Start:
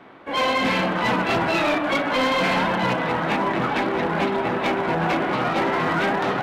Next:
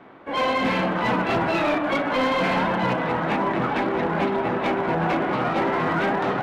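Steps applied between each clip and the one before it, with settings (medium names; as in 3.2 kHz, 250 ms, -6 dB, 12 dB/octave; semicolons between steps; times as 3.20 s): treble shelf 2.7 kHz -8 dB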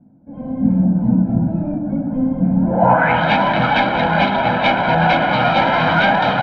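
comb 1.3 ms, depth 82%; level rider gain up to 8.5 dB; low-pass sweep 230 Hz -> 3.8 kHz, 2.60–3.22 s; trim -2 dB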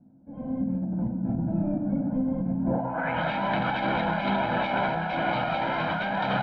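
compressor with a negative ratio -18 dBFS, ratio -1; distance through air 65 m; feedback comb 66 Hz, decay 1.8 s, harmonics all, mix 70%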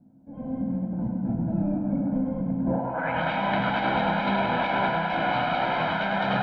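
thinning echo 102 ms, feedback 81%, high-pass 250 Hz, level -6 dB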